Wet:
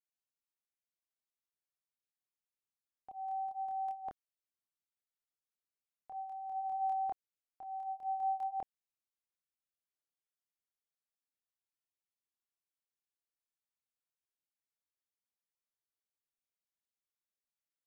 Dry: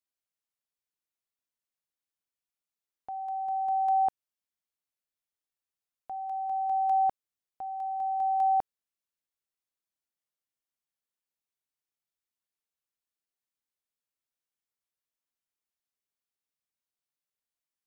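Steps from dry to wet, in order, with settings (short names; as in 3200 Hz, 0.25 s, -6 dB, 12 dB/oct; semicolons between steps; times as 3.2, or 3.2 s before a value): chorus voices 2, 0.75 Hz, delay 27 ms, depth 1.7 ms; gain -5.5 dB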